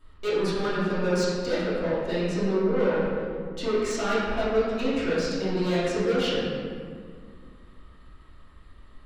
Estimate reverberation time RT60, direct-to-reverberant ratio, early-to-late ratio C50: 2.0 s, −12.5 dB, −2.0 dB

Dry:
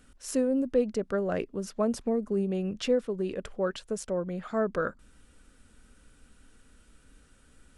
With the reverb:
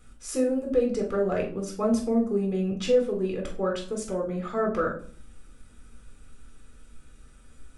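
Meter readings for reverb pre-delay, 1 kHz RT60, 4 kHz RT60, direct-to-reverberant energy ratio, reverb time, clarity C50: 3 ms, 0.50 s, 0.35 s, 0.5 dB, 0.50 s, 9.0 dB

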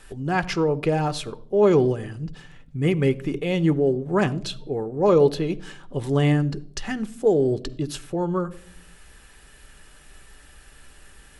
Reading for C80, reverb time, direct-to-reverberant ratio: 22.0 dB, 0.65 s, 11.5 dB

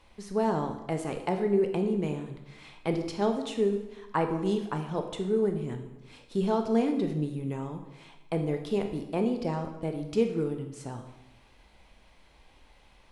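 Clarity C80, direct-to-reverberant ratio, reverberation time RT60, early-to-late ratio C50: 10.0 dB, 5.0 dB, 1.0 s, 7.5 dB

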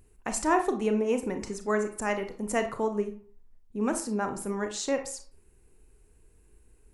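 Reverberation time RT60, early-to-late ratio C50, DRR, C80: 0.45 s, 10.0 dB, 6.5 dB, 15.0 dB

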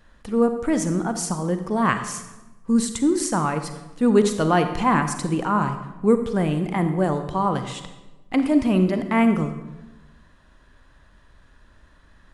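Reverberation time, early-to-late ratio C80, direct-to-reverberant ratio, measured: 1.1 s, 11.0 dB, 8.0 dB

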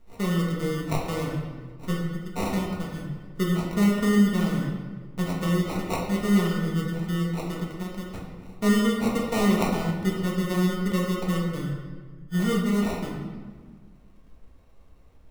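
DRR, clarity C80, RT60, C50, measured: −3.0 dB, 4.5 dB, 1.5 s, 2.5 dB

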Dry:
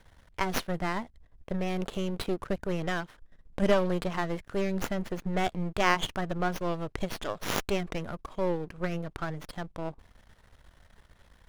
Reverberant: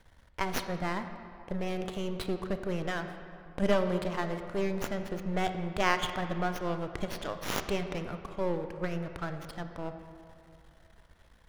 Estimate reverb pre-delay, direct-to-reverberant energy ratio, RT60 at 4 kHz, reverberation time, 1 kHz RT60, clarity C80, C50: 20 ms, 7.5 dB, 1.5 s, 2.6 s, 2.6 s, 9.0 dB, 8.0 dB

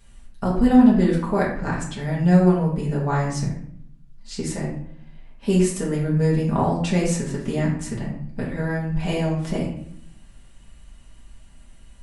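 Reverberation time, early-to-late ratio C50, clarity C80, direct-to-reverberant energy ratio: 0.65 s, 4.5 dB, 8.0 dB, −5.5 dB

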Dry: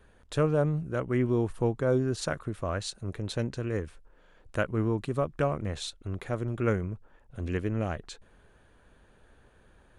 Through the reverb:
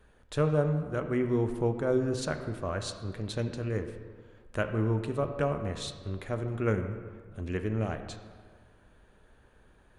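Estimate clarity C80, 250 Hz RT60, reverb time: 10.0 dB, 1.7 s, 1.7 s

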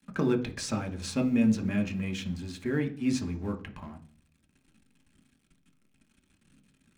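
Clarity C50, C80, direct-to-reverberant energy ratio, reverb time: 14.0 dB, 18.5 dB, 3.0 dB, 0.45 s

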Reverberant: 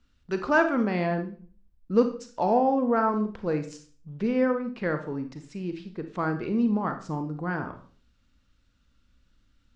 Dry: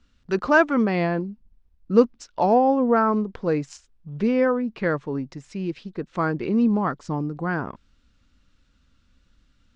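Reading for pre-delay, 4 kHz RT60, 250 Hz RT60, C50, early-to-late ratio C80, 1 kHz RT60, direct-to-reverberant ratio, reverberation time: 32 ms, 0.40 s, 0.60 s, 10.0 dB, 14.5 dB, 0.40 s, 7.0 dB, 0.45 s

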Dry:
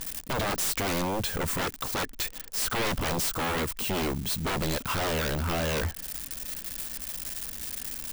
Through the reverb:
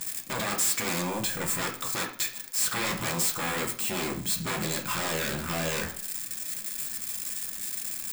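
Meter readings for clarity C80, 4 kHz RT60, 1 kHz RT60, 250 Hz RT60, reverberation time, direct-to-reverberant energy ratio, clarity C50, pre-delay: 14.5 dB, 0.45 s, 0.45 s, 0.55 s, 0.45 s, 2.0 dB, 9.5 dB, 3 ms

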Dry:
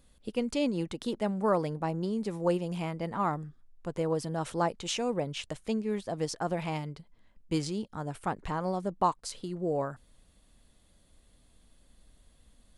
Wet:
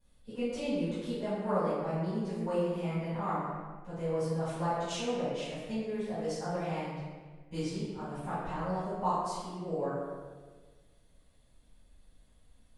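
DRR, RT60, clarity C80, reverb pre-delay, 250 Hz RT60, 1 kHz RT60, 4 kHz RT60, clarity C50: −16.0 dB, 1.5 s, 0.0 dB, 3 ms, 1.6 s, 1.3 s, 1.0 s, −3.0 dB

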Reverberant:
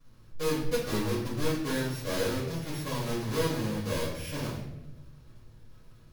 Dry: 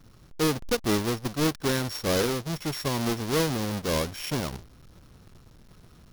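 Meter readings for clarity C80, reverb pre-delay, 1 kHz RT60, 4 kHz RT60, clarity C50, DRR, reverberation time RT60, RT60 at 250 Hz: 6.5 dB, 4 ms, 0.75 s, 0.60 s, 3.0 dB, −9.0 dB, 0.90 s, 1.3 s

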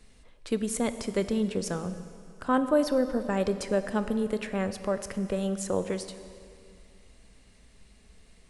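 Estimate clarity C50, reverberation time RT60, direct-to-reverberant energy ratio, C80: 11.0 dB, 2.4 s, 10.5 dB, 12.0 dB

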